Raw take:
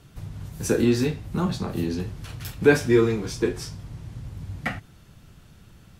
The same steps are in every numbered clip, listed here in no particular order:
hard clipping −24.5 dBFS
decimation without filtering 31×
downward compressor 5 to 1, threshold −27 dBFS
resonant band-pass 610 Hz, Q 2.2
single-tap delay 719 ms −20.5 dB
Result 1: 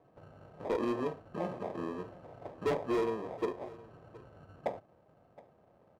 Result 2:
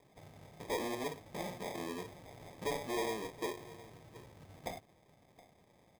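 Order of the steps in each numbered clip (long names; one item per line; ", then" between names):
decimation without filtering, then resonant band-pass, then hard clipping, then downward compressor, then single-tap delay
hard clipping, then single-tap delay, then downward compressor, then resonant band-pass, then decimation without filtering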